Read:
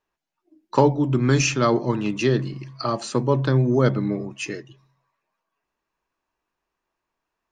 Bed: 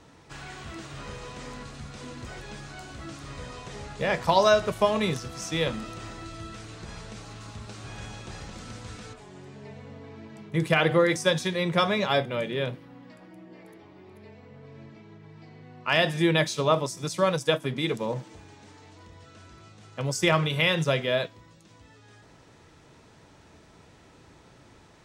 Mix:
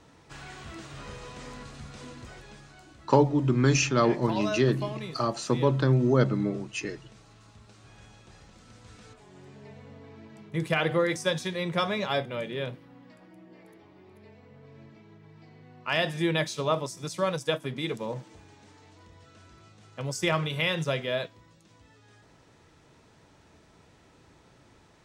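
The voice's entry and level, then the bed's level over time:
2.35 s, -3.5 dB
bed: 2.01 s -2.5 dB
2.98 s -12.5 dB
8.63 s -12.5 dB
9.45 s -4 dB

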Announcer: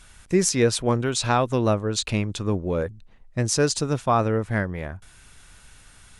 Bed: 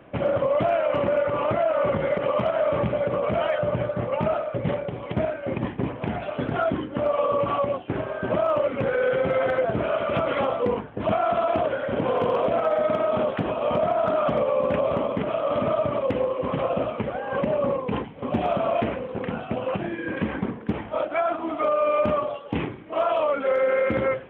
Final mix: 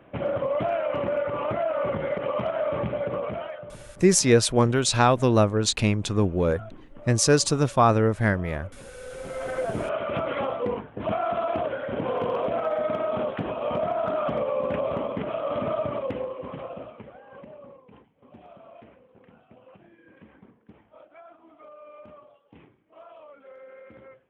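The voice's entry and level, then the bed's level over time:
3.70 s, +2.0 dB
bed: 3.19 s -4 dB
3.84 s -21 dB
8.95 s -21 dB
9.66 s -4 dB
15.93 s -4 dB
17.86 s -25 dB

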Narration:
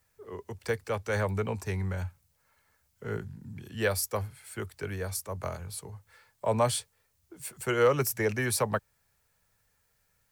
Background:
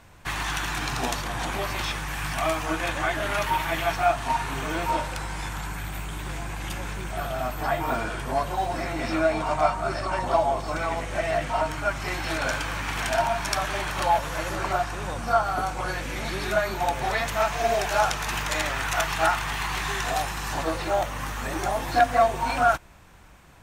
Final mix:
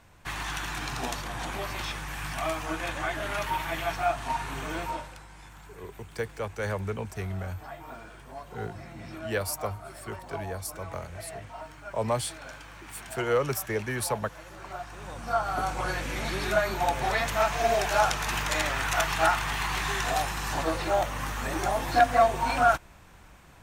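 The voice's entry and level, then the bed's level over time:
5.50 s, -2.0 dB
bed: 4.79 s -5 dB
5.25 s -16.5 dB
14.50 s -16.5 dB
15.70 s -1 dB

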